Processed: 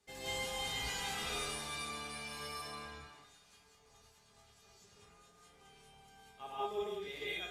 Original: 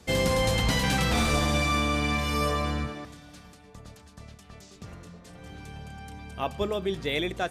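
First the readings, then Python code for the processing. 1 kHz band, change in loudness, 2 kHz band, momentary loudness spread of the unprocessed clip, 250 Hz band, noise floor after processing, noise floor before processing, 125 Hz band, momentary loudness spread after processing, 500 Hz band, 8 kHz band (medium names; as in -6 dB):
-13.0 dB, -13.5 dB, -12.5 dB, 20 LU, -23.0 dB, -66 dBFS, -52 dBFS, -24.5 dB, 15 LU, -14.5 dB, -9.0 dB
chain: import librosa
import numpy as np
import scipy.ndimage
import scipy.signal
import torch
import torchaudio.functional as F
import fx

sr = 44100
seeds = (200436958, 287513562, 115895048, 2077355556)

y = fx.low_shelf(x, sr, hz=460.0, db=-9.0)
y = fx.comb_fb(y, sr, f0_hz=410.0, decay_s=0.27, harmonics='all', damping=0.0, mix_pct=90)
y = fx.rev_gated(y, sr, seeds[0], gate_ms=220, shape='rising', drr_db=-8.0)
y = F.gain(torch.from_numpy(y), -4.5).numpy()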